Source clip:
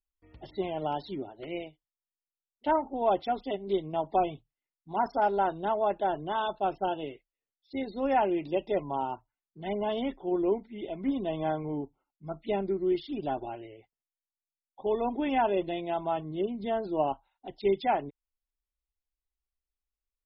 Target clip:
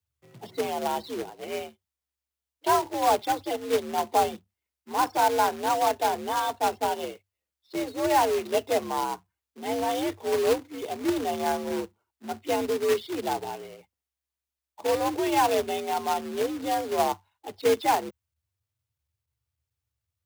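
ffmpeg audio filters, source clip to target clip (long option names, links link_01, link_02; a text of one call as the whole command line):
ffmpeg -i in.wav -af "acrusher=bits=2:mode=log:mix=0:aa=0.000001,afreqshift=67,volume=3dB" out.wav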